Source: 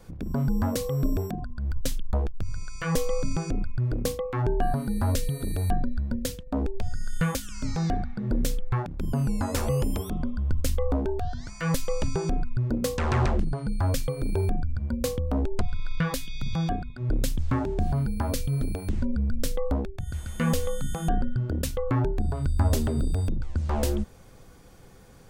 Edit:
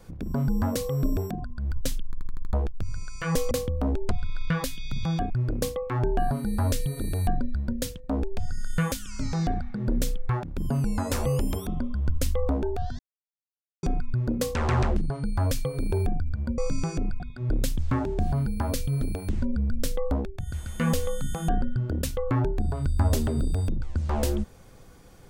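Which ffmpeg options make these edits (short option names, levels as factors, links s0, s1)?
-filter_complex "[0:a]asplit=12[s0][s1][s2][s3][s4][s5][s6][s7][s8][s9][s10][s11];[s0]atrim=end=2.132[s12];[s1]atrim=start=2.048:end=2.132[s13];[s2]atrim=start=2.048:end=2.132[s14];[s3]atrim=start=2.048:end=2.132[s15];[s4]atrim=start=2.048:end=2.132[s16];[s5]atrim=start=2.048:end=3.112[s17];[s6]atrim=start=15.008:end=16.802[s18];[s7]atrim=start=3.728:end=11.42,asetpts=PTS-STARTPTS,afade=t=out:st=7.688:d=0.004:c=hsin[s19];[s8]atrim=start=11.42:end=12.26,asetpts=PTS-STARTPTS,volume=0[s20];[s9]atrim=start=12.26:end=15.012,asetpts=PTS-STARTPTS,afade=t=in:d=0.004:c=hsin[s21];[s10]atrim=start=3.108:end=3.732[s22];[s11]atrim=start=16.798[s23];[s12][s13]acrossfade=d=0.004:c1=hsin:c2=hsin[s24];[s24][s14]acrossfade=d=0.004:c1=hsin:c2=hsin[s25];[s25][s15]acrossfade=d=0.004:c1=hsin:c2=hsin[s26];[s26][s16]acrossfade=d=0.004:c1=hsin:c2=hsin[s27];[s27][s17]acrossfade=d=0.004:c1=hsin:c2=hsin[s28];[s28][s18]acrossfade=d=0.004:c1=hsin:c2=hsin[s29];[s19][s20][s21]concat=n=3:v=0:a=1[s30];[s29][s30]acrossfade=d=0.004:c1=hsin:c2=hsin[s31];[s31][s22]acrossfade=d=0.004:c1=hsin:c2=hsin[s32];[s32][s23]acrossfade=d=0.004:c1=hsin:c2=hsin"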